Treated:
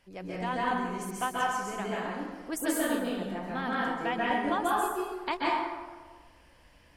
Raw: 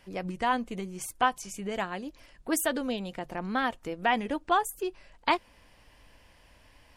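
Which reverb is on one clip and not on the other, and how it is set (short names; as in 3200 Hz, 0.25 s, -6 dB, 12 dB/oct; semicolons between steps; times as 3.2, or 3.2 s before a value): plate-style reverb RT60 1.4 s, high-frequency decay 0.55×, pre-delay 0.12 s, DRR -6 dB; gain -7.5 dB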